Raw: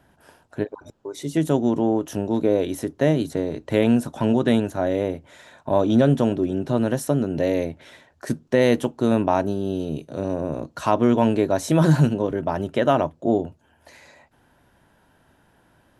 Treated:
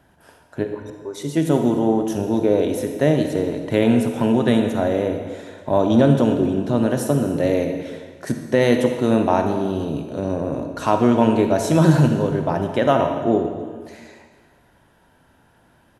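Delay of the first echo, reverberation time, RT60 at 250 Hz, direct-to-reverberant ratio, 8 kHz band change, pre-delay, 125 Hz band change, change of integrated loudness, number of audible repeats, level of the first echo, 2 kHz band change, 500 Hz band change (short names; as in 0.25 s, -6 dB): 0.267 s, 1.6 s, 1.6 s, 5.0 dB, +2.5 dB, 37 ms, +2.5 dB, +2.5 dB, 1, -21.5 dB, +2.5 dB, +2.5 dB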